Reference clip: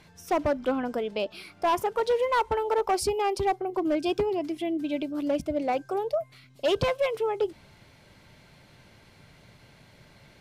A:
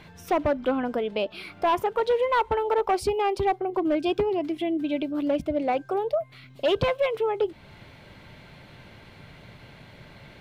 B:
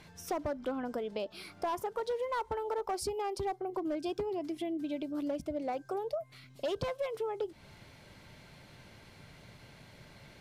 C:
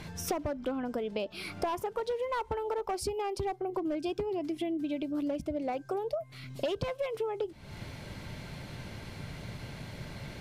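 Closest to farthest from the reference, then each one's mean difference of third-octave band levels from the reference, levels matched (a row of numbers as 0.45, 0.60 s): A, B, C; 2.5, 4.0, 7.0 dB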